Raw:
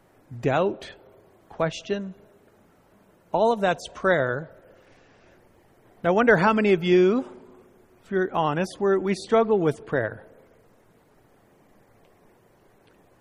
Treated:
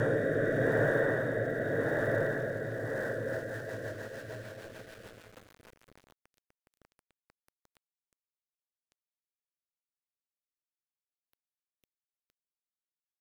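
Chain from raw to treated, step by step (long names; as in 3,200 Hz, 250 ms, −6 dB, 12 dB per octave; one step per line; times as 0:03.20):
extreme stretch with random phases 11×, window 1.00 s, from 0:09.98
centre clipping without the shift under −46 dBFS
rotating-speaker cabinet horn 0.85 Hz, later 6.7 Hz, at 0:02.79
level +1 dB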